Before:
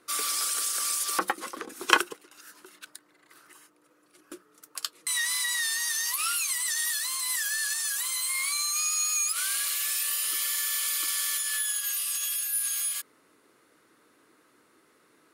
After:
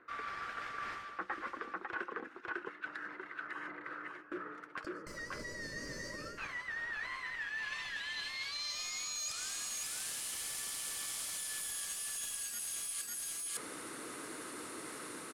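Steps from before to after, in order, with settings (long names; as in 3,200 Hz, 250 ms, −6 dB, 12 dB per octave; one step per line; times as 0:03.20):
phase distortion by the signal itself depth 0.37 ms
automatic gain control gain up to 4.5 dB
soft clipping −16.5 dBFS, distortion −17 dB
gain on a spectral selection 0:04.84–0:06.38, 630–4,300 Hz −22 dB
low-pass filter sweep 1,700 Hz → 9,700 Hz, 0:06.97–0:09.85
single-tap delay 550 ms −4 dB
reversed playback
downward compressor 6 to 1, threshold −54 dBFS, peak gain reduction 32.5 dB
reversed playback
level +12.5 dB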